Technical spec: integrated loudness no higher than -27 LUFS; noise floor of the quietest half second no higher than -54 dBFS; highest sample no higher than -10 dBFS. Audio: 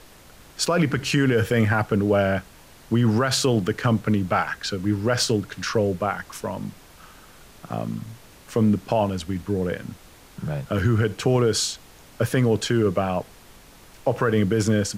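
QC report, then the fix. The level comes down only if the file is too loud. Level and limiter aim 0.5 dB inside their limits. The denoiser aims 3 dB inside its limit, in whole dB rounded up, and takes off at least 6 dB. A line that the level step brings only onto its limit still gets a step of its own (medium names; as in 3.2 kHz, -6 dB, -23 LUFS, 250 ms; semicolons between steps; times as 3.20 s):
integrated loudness -23.0 LUFS: fail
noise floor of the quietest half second -48 dBFS: fail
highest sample -9.0 dBFS: fail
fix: noise reduction 6 dB, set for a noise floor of -48 dBFS; trim -4.5 dB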